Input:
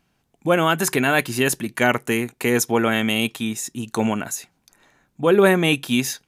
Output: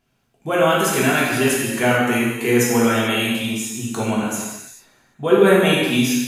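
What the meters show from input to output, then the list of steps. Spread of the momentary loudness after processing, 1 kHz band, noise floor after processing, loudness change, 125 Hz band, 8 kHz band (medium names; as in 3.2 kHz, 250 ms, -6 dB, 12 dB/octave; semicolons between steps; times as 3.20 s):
11 LU, +2.0 dB, -66 dBFS, +2.5 dB, +2.5 dB, +2.0 dB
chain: gated-style reverb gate 470 ms falling, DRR -6 dB; trim -5 dB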